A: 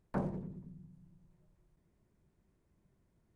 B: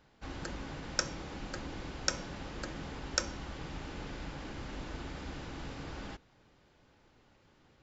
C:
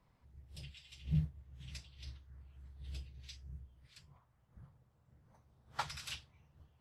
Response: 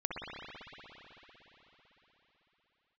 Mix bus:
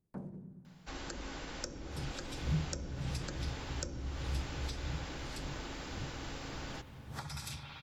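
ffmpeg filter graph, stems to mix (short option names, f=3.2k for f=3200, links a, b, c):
-filter_complex "[0:a]volume=-16.5dB,asplit=2[a][b];[b]volume=-19.5dB[c];[1:a]equalizer=f=120:t=o:w=1.9:g=-9.5,adelay=650,volume=0.5dB,asplit=2[d][e];[e]volume=-16dB[f];[2:a]bandreject=f=2.9k:w=5.8,alimiter=level_in=9dB:limit=-24dB:level=0:latency=1:release=375,volume=-9dB,dynaudnorm=f=120:g=11:m=12dB,adelay=1400,volume=-6dB,asplit=2[g][h];[h]volume=-6dB[i];[a][g]amix=inputs=2:normalize=0,equalizer=f=190:w=0.4:g=12,acompressor=threshold=-42dB:ratio=2,volume=0dB[j];[3:a]atrim=start_sample=2205[k];[c][f][i]amix=inputs=3:normalize=0[l];[l][k]afir=irnorm=-1:irlink=0[m];[d][j][m]amix=inputs=3:normalize=0,aemphasis=mode=production:type=cd,acrossover=split=480[n][o];[o]acompressor=threshold=-43dB:ratio=5[p];[n][p]amix=inputs=2:normalize=0"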